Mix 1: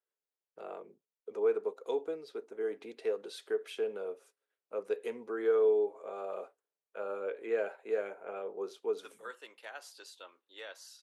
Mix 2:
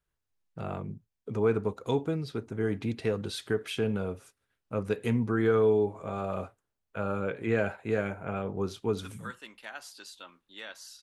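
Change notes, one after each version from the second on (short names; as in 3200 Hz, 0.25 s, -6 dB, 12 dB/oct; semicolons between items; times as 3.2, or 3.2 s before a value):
second voice -4.5 dB; master: remove ladder high-pass 380 Hz, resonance 50%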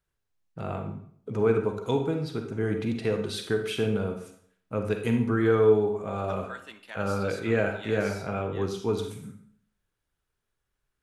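second voice: entry -2.75 s; reverb: on, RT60 0.60 s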